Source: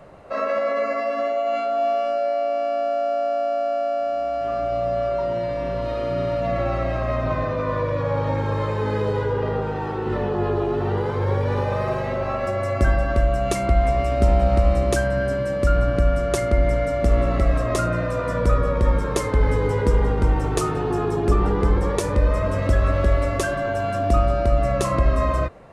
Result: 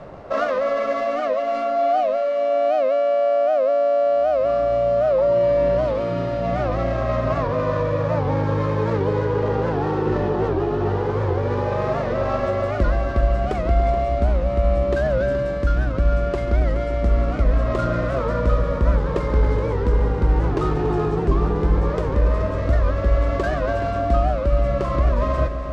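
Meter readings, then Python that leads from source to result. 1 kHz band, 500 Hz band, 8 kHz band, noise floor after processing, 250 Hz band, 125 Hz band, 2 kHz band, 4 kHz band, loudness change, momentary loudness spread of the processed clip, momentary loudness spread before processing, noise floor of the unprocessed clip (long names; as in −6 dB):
+0.5 dB, +2.0 dB, below −10 dB, −24 dBFS, +1.0 dB, +0.5 dB, −1.0 dB, −2.5 dB, +1.0 dB, 4 LU, 5 LU, −26 dBFS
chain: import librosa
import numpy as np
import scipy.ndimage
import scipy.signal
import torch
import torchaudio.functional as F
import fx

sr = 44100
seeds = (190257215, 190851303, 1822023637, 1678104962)

y = scipy.ndimage.median_filter(x, 15, mode='constant')
y = fx.rider(y, sr, range_db=10, speed_s=0.5)
y = fx.air_absorb(y, sr, metres=83.0)
y = fx.echo_heads(y, sr, ms=141, heads='all three', feedback_pct=66, wet_db=-15.0)
y = fx.record_warp(y, sr, rpm=78.0, depth_cents=160.0)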